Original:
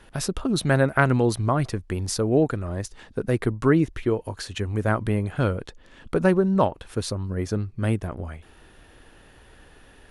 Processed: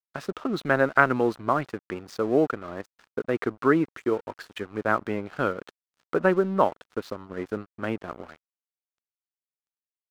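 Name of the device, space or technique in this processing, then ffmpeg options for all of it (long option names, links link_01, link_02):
pocket radio on a weak battery: -af "highpass=260,lowpass=3000,aeval=exprs='sgn(val(0))*max(abs(val(0))-0.00631,0)':channel_layout=same,equalizer=frequency=1300:width_type=o:width=0.48:gain=5.5"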